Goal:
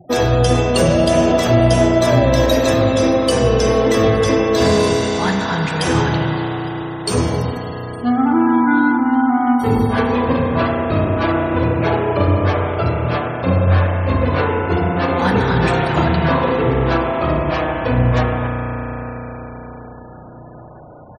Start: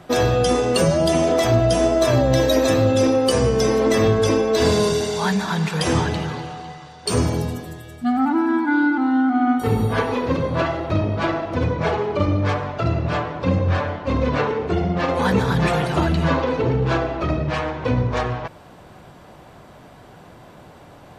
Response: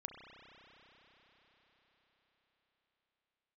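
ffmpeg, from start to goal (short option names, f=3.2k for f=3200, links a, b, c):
-filter_complex "[0:a]aecho=1:1:862:0.075[a];[1:a]atrim=start_sample=2205,asetrate=41454,aresample=44100[b];[a][b]afir=irnorm=-1:irlink=0,afftfilt=real='re*gte(hypot(re,im),0.00891)':imag='im*gte(hypot(re,im),0.00891)':win_size=1024:overlap=0.75,volume=7dB"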